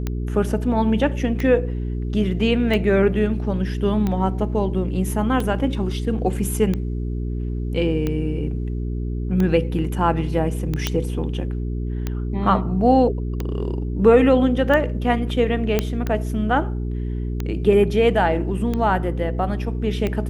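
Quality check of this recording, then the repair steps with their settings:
hum 60 Hz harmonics 7 -25 dBFS
tick 45 rpm -12 dBFS
10.87 pop -5 dBFS
15.79 pop -5 dBFS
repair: de-click; de-hum 60 Hz, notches 7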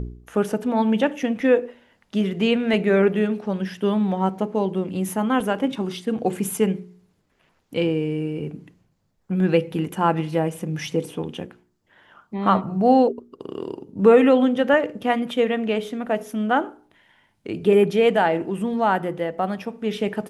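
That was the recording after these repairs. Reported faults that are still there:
none

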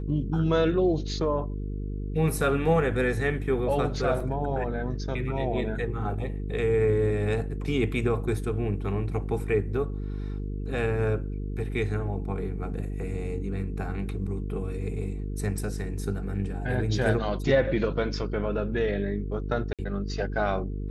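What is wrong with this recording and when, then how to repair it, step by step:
buzz 50 Hz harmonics 9 -32 dBFS
4.2 gap 3.6 ms
19.73–19.79 gap 57 ms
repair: de-hum 50 Hz, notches 9; interpolate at 4.2, 3.6 ms; interpolate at 19.73, 57 ms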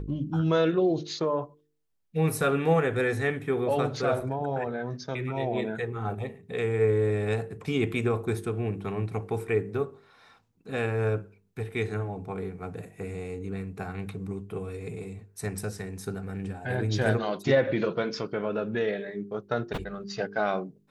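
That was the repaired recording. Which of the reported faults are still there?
none

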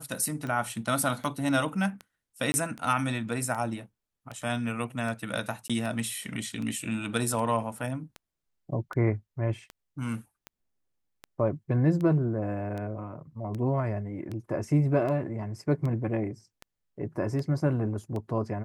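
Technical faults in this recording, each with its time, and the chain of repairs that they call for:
tick 78 rpm -24 dBFS
2.52–2.54 gap 20 ms
5.68–5.7 gap 16 ms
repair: de-click; interpolate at 2.52, 20 ms; interpolate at 5.68, 16 ms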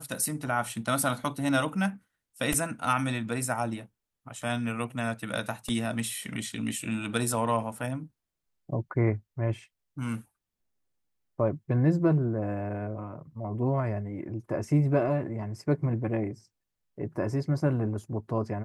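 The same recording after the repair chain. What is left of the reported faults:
none

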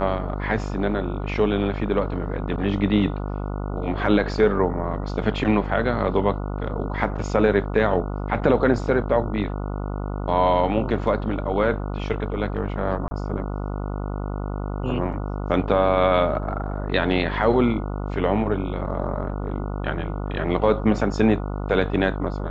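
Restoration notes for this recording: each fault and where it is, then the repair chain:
buzz 50 Hz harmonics 29 -28 dBFS
13.08–13.11 gap 30 ms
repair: de-hum 50 Hz, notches 29; interpolate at 13.08, 30 ms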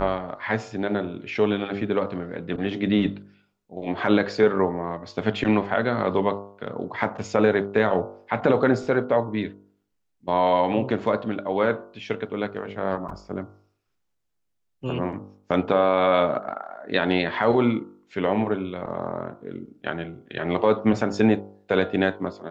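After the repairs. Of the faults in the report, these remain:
none

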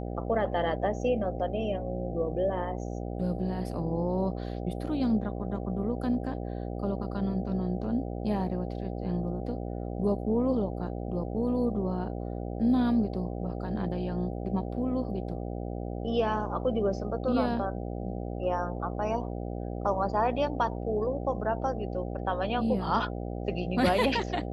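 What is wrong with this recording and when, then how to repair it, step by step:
buzz 60 Hz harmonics 13 -35 dBFS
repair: de-hum 60 Hz, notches 13

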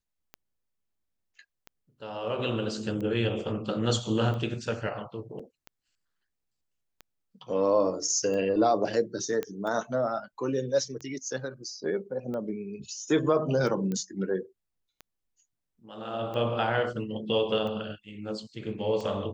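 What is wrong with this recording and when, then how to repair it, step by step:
tick 45 rpm -26 dBFS
5.39 gap 4.7 ms
9.43 pop -18 dBFS
13.92 pop -21 dBFS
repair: de-click; interpolate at 5.39, 4.7 ms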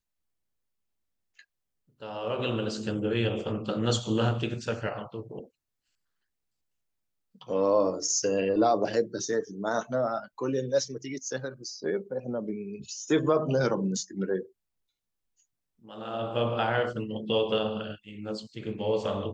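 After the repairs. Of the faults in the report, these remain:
none

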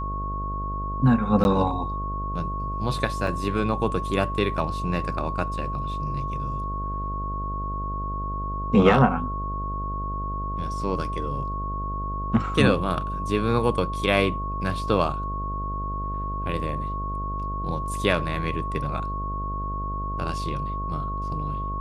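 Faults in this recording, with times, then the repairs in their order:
buzz 50 Hz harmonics 14 -31 dBFS
tone 1100 Hz -30 dBFS
1.44–1.45 gap 11 ms
3.27 gap 3.4 ms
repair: de-hum 50 Hz, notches 14; notch 1100 Hz, Q 30; interpolate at 1.44, 11 ms; interpolate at 3.27, 3.4 ms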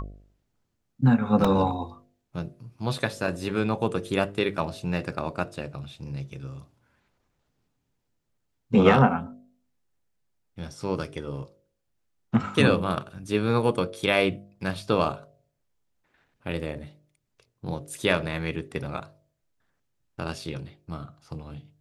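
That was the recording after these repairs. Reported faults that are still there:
none

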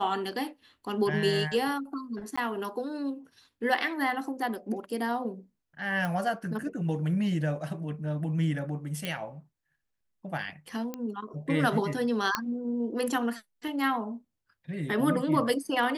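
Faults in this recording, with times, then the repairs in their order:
2.36–2.38 gap 15 ms
6.05 pop
9.05 pop -18 dBFS
10.94 pop -21 dBFS
12.35 pop -11 dBFS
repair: de-click; interpolate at 2.36, 15 ms

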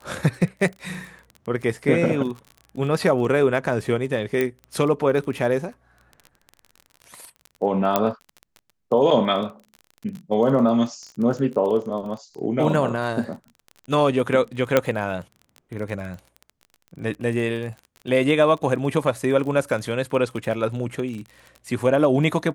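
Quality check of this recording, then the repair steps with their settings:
crackle 27/s -31 dBFS
4.41 pop -10 dBFS
7.96 pop -4 dBFS
14.77 pop -4 dBFS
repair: de-click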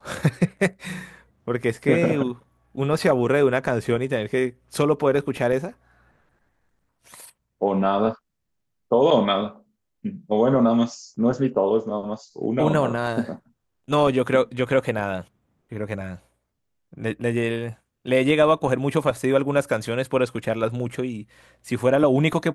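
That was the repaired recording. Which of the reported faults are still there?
none

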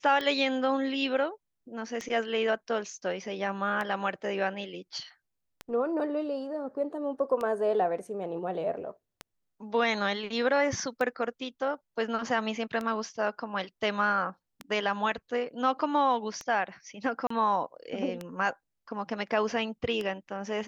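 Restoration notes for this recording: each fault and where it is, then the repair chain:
tick 33 1/3 rpm -20 dBFS
17.27–17.3 gap 34 ms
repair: de-click; interpolate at 17.27, 34 ms

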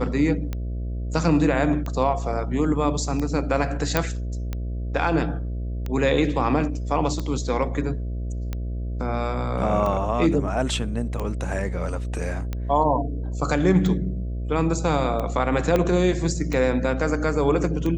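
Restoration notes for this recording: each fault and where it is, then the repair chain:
buzz 60 Hz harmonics 11 -28 dBFS
tick 45 rpm -16 dBFS
3.97 pop -5 dBFS
15.76 pop -9 dBFS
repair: de-click; de-hum 60 Hz, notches 11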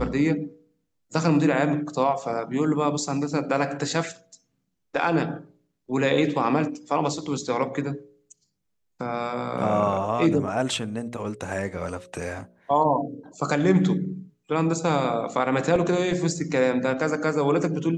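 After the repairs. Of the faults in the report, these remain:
15.76 pop

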